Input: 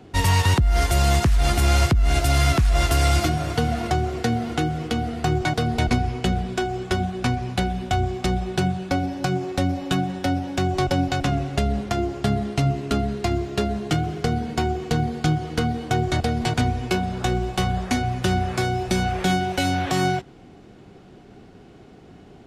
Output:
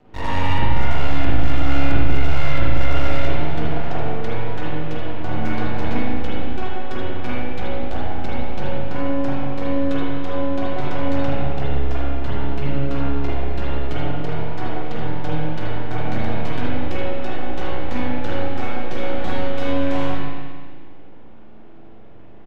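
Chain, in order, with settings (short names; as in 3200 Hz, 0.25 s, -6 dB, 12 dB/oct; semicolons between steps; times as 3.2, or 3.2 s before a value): LPF 3300 Hz 12 dB/oct; doubler 48 ms -13 dB; de-hum 87.96 Hz, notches 28; half-wave rectifier; on a send: echo 76 ms -10 dB; on the sum: spring tank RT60 1.7 s, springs 36/45 ms, chirp 50 ms, DRR -8.5 dB; gain -6 dB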